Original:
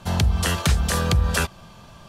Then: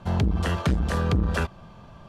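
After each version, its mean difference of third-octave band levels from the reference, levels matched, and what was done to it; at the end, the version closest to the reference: 5.5 dB: low-pass 1.3 kHz 6 dB/octave; transformer saturation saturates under 190 Hz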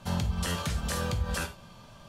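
3.0 dB: peak limiter -15.5 dBFS, peak gain reduction 8 dB; gated-style reverb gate 120 ms falling, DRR 5.5 dB; trim -6.5 dB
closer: second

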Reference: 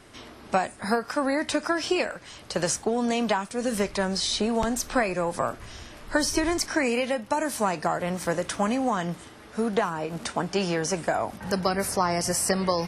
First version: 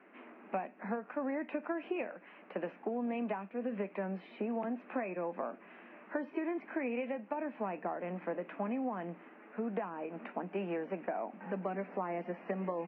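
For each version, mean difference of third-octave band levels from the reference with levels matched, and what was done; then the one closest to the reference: 10.5 dB: dynamic bell 1.5 kHz, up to -7 dB, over -41 dBFS, Q 0.99; Chebyshev band-pass 190–2600 Hz, order 5; doubling 12 ms -14 dB; compression 2.5:1, threshold -26 dBFS, peak gain reduction 5 dB; trim -7 dB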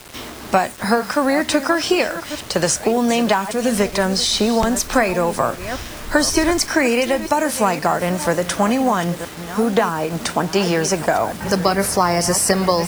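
4.5 dB: chunks repeated in reverse 487 ms, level -13.5 dB; in parallel at -2.5 dB: compression 5:1, threshold -35 dBFS, peak gain reduction 16 dB; on the sum: bit crusher 7-bit; trim +6.5 dB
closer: second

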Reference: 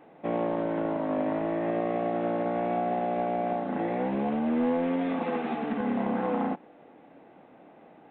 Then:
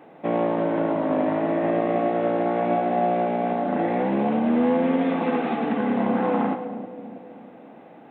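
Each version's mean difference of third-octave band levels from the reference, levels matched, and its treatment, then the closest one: 1.0 dB: high-pass 82 Hz; two-band feedback delay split 660 Hz, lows 324 ms, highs 108 ms, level -10.5 dB; trim +5.5 dB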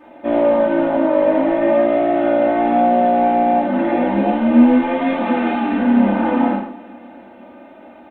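3.0 dB: comb 3.3 ms, depth 83%; feedback delay 343 ms, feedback 56%, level -23 dB; gated-style reverb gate 220 ms falling, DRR -5.5 dB; trim +3.5 dB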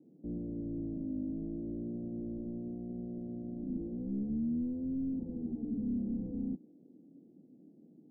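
12.0 dB: Bessel high-pass 200 Hz, order 8; hard clipper -33 dBFS, distortion -7 dB; inverse Chebyshev low-pass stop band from 1.7 kHz, stop band 80 dB; trim +3.5 dB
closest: first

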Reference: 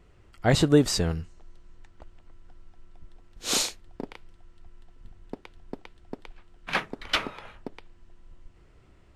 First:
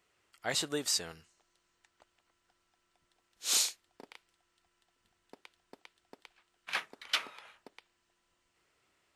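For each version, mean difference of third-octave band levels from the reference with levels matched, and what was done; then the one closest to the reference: 6.5 dB: high-pass 1.3 kHz 6 dB/octave; treble shelf 5 kHz +7 dB; trim -6 dB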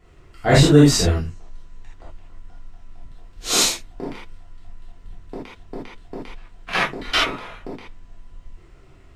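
5.0 dB: hum notches 50/100/150/200/250/300/350 Hz; gated-style reverb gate 100 ms flat, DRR -7.5 dB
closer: second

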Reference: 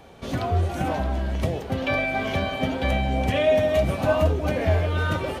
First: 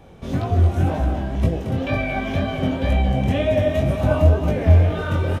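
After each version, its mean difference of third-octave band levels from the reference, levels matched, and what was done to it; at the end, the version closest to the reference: 4.0 dB: band-stop 4.4 kHz, Q 13; on a send: delay 226 ms -7 dB; on the sum: chorus 2 Hz, delay 18 ms, depth 6.1 ms; bass shelf 370 Hz +10 dB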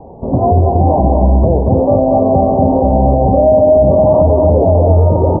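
12.5 dB: steep low-pass 970 Hz 72 dB/octave; dynamic bell 540 Hz, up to +3 dB, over -32 dBFS, Q 1.3; delay 233 ms -3.5 dB; loudness maximiser +15 dB; trim -1 dB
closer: first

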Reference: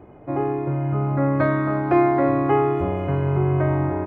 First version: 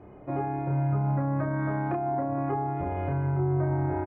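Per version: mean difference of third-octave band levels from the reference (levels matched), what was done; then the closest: 3.0 dB: low-pass that closes with the level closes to 1 kHz, closed at -14.5 dBFS; peak limiter -17.5 dBFS, peak gain reduction 10 dB; distance through air 62 m; doubling 30 ms -2.5 dB; trim -4.5 dB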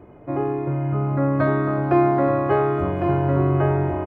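1.5 dB: on a send: delay 1105 ms -5.5 dB; on the sum: dynamic bell 2.1 kHz, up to -6 dB, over -46 dBFS, Q 4.5; band-stop 790 Hz, Q 12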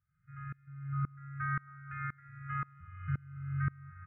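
14.5 dB: low-pass 1.8 kHz 24 dB/octave; FFT band-reject 180–1200 Hz; tilt EQ +1.5 dB/octave; sawtooth tremolo in dB swelling 1.9 Hz, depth 27 dB; trim -2.5 dB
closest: second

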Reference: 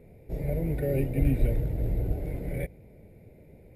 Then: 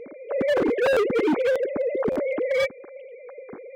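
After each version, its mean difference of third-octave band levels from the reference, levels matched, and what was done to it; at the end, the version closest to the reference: 12.0 dB: formants replaced by sine waves; in parallel at -3 dB: compression 16:1, threshold -32 dBFS, peak gain reduction 16 dB; on the sum: overload inside the chain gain 25 dB; buffer glitch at 0.92/1.51/2.11 s, times 3; trim +6.5 dB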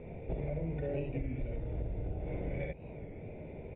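8.0 dB: on a send: early reflections 54 ms -8.5 dB, 67 ms -4.5 dB; on the sum: compression 12:1, threshold -38 dBFS, peak gain reduction 21.5 dB; rippled Chebyshev low-pass 3.6 kHz, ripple 6 dB; warped record 33 1/3 rpm, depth 100 cents; trim +10.5 dB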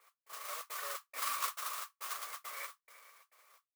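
22.5 dB: multi-head delay 112 ms, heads first and second, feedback 49%, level -12 dB; trance gate "x..xxxx.xx" 172 bpm -60 dB; modulation noise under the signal 13 dB; ladder high-pass 1.1 kHz, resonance 85%; trim +8 dB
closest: second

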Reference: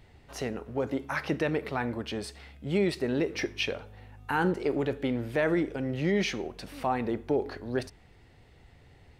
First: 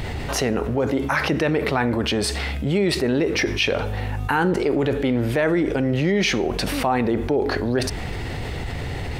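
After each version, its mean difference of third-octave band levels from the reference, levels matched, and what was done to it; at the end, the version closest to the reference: 7.0 dB: level flattener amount 70%; trim +5 dB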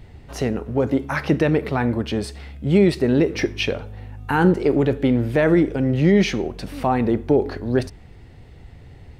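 3.0 dB: bass shelf 380 Hz +8.5 dB; trim +6 dB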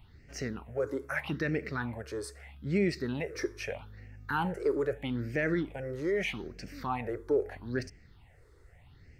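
4.0 dB: phase shifter stages 6, 0.79 Hz, lowest notch 190–1000 Hz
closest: second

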